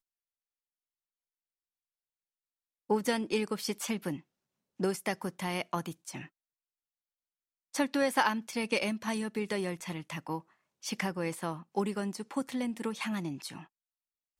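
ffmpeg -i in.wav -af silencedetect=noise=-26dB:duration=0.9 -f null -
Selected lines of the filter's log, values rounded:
silence_start: 0.00
silence_end: 2.90 | silence_duration: 2.90
silence_start: 5.80
silence_end: 7.76 | silence_duration: 1.96
silence_start: 13.18
silence_end: 14.39 | silence_duration: 1.21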